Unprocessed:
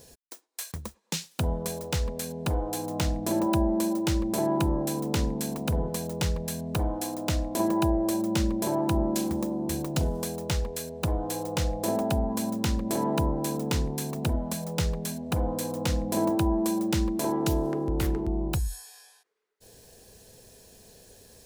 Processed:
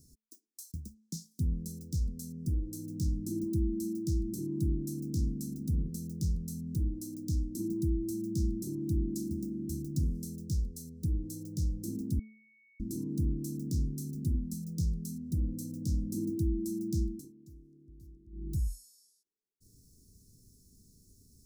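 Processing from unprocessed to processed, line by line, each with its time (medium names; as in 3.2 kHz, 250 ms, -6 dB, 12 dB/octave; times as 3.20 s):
2.33–2.62 s: time-frequency box 770–4600 Hz -15 dB
12.19–12.80 s: bleep 2.22 kHz -13.5 dBFS
17.00–18.61 s: dip -22 dB, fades 0.31 s
whole clip: elliptic band-stop 310–5300 Hz, stop band 40 dB; tone controls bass +5 dB, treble -3 dB; de-hum 217.6 Hz, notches 16; trim -7 dB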